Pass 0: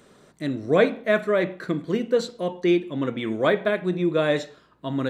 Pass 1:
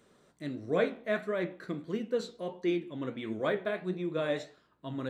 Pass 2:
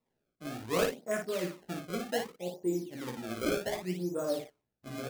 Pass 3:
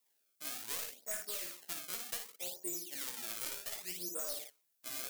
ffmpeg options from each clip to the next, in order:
-af "flanger=delay=8.3:depth=9.3:regen=64:speed=1.5:shape=triangular,volume=0.501"
-af "afwtdn=0.0158,acrusher=samples=27:mix=1:aa=0.000001:lfo=1:lforange=43.2:lforate=0.66,aecho=1:1:17|56:0.531|0.562,volume=0.668"
-af "aderivative,aeval=exprs='clip(val(0),-1,0.01)':c=same,acompressor=threshold=0.00398:ratio=10,volume=5.01"

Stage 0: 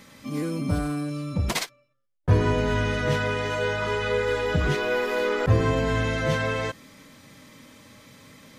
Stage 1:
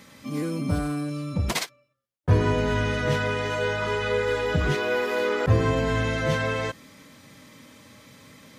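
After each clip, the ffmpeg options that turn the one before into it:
-af "highpass=42"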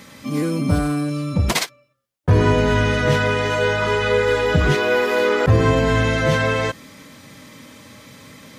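-af "alimiter=level_in=3.76:limit=0.891:release=50:level=0:latency=1,volume=0.596"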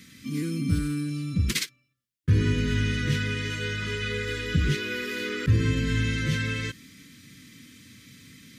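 -af "asuperstop=centerf=750:order=4:qfactor=0.51,volume=0.531"

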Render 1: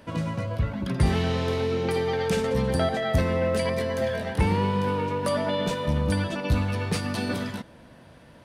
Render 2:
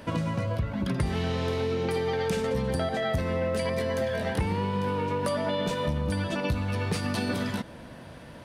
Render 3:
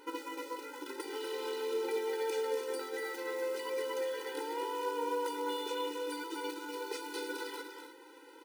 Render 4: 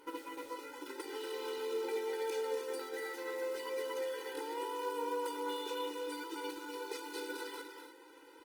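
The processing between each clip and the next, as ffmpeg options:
-af "acompressor=threshold=0.0282:ratio=5,volume=1.88"
-filter_complex "[0:a]acrusher=bits=4:mode=log:mix=0:aa=0.000001,asplit=2[s0][s1];[s1]aecho=0:1:244|306:0.447|0.282[s2];[s0][s2]amix=inputs=2:normalize=0,afftfilt=real='re*eq(mod(floor(b*sr/1024/260),2),1)':imag='im*eq(mod(floor(b*sr/1024/260),2),1)':win_size=1024:overlap=0.75,volume=0.562"
-af "volume=0.75" -ar 48000 -c:a libopus -b:a 24k

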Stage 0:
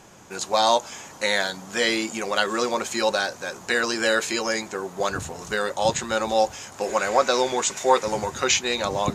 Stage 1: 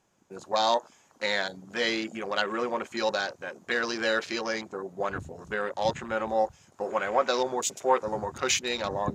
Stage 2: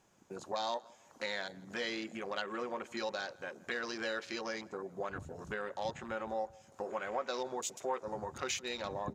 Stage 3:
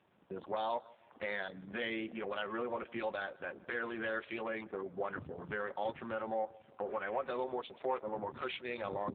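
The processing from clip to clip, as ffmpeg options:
-af "afwtdn=0.0251,volume=0.562"
-filter_complex "[0:a]acompressor=threshold=0.00562:ratio=2,asplit=2[s0][s1];[s1]adelay=164,lowpass=f=4000:p=1,volume=0.0708,asplit=2[s2][s3];[s3]adelay=164,lowpass=f=4000:p=1,volume=0.4,asplit=2[s4][s5];[s5]adelay=164,lowpass=f=4000:p=1,volume=0.4[s6];[s0][s2][s4][s6]amix=inputs=4:normalize=0,volume=1.12"
-af "aeval=exprs='(tanh(20*val(0)+0.15)-tanh(0.15))/20':c=same,volume=1.41" -ar 8000 -c:a libopencore_amrnb -b:a 5900

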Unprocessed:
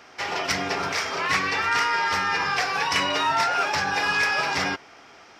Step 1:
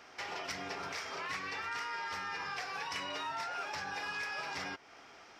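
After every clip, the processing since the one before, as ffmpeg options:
-af "lowshelf=f=170:g=-6,acompressor=threshold=0.0178:ratio=2.5,lowshelf=f=67:g=9,volume=0.473"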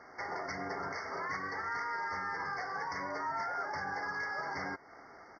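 -af "adynamicsmooth=sensitivity=1.5:basefreq=3400,aresample=16000,volume=50.1,asoftclip=hard,volume=0.02,aresample=44100,afftfilt=real='re*eq(mod(floor(b*sr/1024/2200),2),0)':imag='im*eq(mod(floor(b*sr/1024/2200),2),0)':win_size=1024:overlap=0.75,volume=1.58"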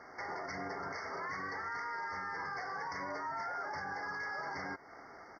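-af "alimiter=level_in=2.99:limit=0.0631:level=0:latency=1:release=56,volume=0.335,volume=1.12"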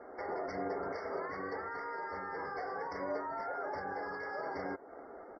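-af "equalizer=f=125:t=o:w=1:g=-11,equalizer=f=500:t=o:w=1:g=6,equalizer=f=1000:t=o:w=1:g=-6,equalizer=f=2000:t=o:w=1:g=-8,adynamicsmooth=sensitivity=4.5:basefreq=3300,afftdn=nr=19:nf=-64,volume=1.88"

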